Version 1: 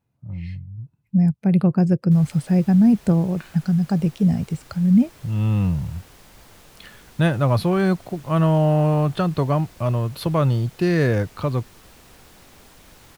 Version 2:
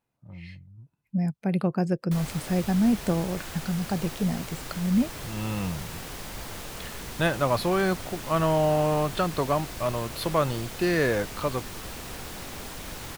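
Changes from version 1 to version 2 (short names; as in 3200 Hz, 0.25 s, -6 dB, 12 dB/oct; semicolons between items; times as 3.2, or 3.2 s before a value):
speech: add bell 100 Hz -14 dB 2.4 oct; background +10.5 dB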